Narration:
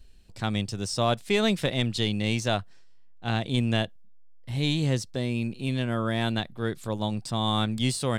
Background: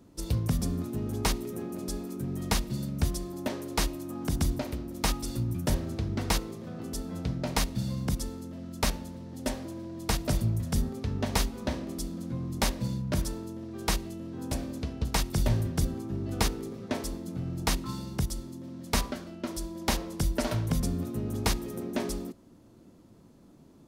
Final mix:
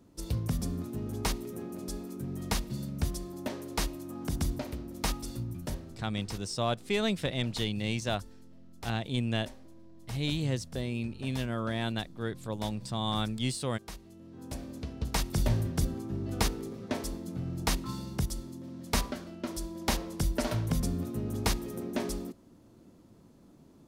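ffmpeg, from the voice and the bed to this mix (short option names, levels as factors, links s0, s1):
-filter_complex "[0:a]adelay=5600,volume=0.531[s0];[1:a]volume=3.76,afade=t=out:st=5.11:d=0.98:silence=0.223872,afade=t=in:st=13.98:d=1.38:silence=0.177828[s1];[s0][s1]amix=inputs=2:normalize=0"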